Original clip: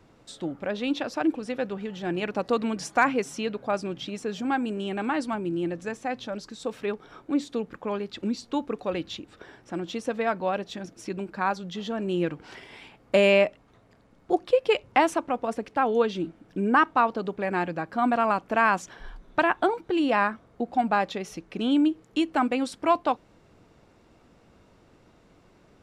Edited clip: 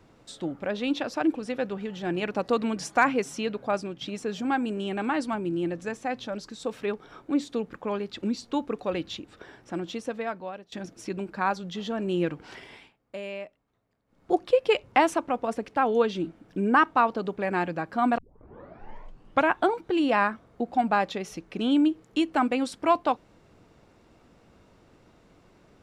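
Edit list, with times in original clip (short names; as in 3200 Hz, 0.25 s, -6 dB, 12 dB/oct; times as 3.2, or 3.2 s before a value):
3.76–4.01 fade out, to -8 dB
9.75–10.72 fade out, to -19.5 dB
12.69–14.31 dip -17.5 dB, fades 0.25 s
18.18 tape start 1.36 s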